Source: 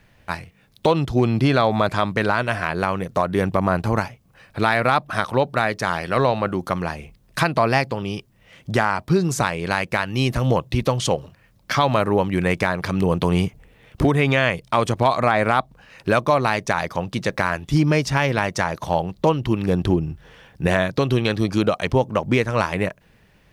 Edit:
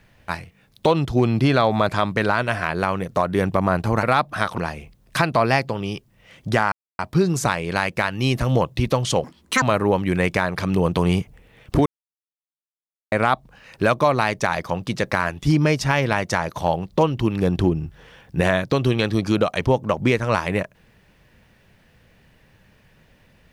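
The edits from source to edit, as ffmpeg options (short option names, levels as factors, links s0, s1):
-filter_complex "[0:a]asplit=8[s0][s1][s2][s3][s4][s5][s6][s7];[s0]atrim=end=4.032[s8];[s1]atrim=start=4.798:end=5.352[s9];[s2]atrim=start=6.798:end=8.94,asetpts=PTS-STARTPTS,afade=t=out:st=2.138:d=0.004:c=hsin,apad=pad_dur=0.27[s10];[s3]atrim=start=8.94:end=11.194,asetpts=PTS-STARTPTS,afade=t=in:d=0.004:c=hsin[s11];[s4]atrim=start=11.19:end=11.88,asetpts=PTS-STARTPTS,asetrate=80262,aresample=44100,atrim=end_sample=16719,asetpts=PTS-STARTPTS[s12];[s5]atrim=start=11.876:end=14.12,asetpts=PTS-STARTPTS,afade=t=out:st=2.24:d=0.004:c=hsin[s13];[s6]atrim=start=14.12:end=15.38,asetpts=PTS-STARTPTS,volume=0[s14];[s7]atrim=start=15.38,asetpts=PTS-STARTPTS,afade=t=in:d=0.004:c=hsin[s15];[s8][s9]acrossfade=d=0.004:c1=hsin:c2=hsin[s16];[s10][s11]concat=n=2:v=0:a=1[s17];[s16][s17]acrossfade=d=0.004:c1=hsin:c2=hsin[s18];[s18][s12]acrossfade=d=0.004:c1=hsin:c2=hsin[s19];[s13][s14][s15]concat=n=3:v=0:a=1[s20];[s19][s20]acrossfade=d=0.004:c1=hsin:c2=hsin"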